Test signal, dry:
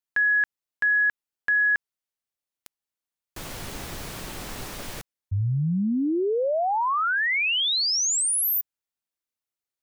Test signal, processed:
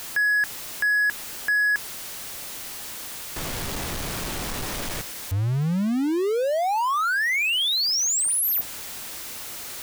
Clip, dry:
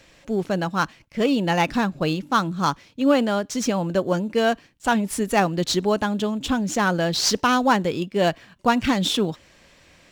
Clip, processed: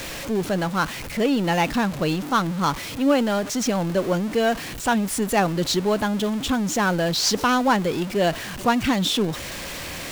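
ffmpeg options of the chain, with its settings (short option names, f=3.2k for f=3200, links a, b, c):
-af "aeval=exprs='val(0)+0.5*0.0531*sgn(val(0))':c=same,volume=-2dB"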